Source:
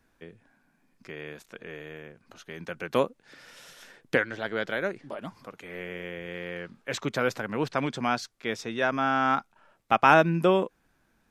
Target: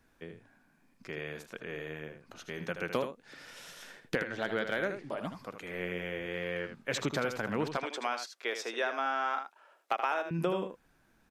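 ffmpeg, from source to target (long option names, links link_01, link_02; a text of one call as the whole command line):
ffmpeg -i in.wav -filter_complex "[0:a]acompressor=threshold=-27dB:ratio=10,asettb=1/sr,asplit=3[link_01][link_02][link_03];[link_01]atrim=end=7.774[link_04];[link_02]atrim=start=7.77:end=10.31,asetpts=PTS-STARTPTS,afade=type=in:duration=0.004:curve=qsin,afade=type=out:start_time=2.536:duration=0.004:curve=qsin,highpass=frequency=380:width=0.5412,highpass=frequency=380:width=1.3066[link_05];[link_03]atrim=start=10.306[link_06];[link_04][link_05]acrossfade=duration=0.004:curve1=hsin:curve2=qsin[link_07];[link_07][link_06]acrossfade=duration=0.004:curve1=qsin:curve2=hsin,aecho=1:1:78:0.376,asoftclip=type=hard:threshold=-19dB" out.wav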